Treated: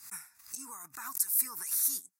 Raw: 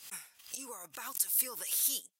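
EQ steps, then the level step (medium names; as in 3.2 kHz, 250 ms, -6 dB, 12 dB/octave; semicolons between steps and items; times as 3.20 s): static phaser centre 1.3 kHz, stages 4; +2.5 dB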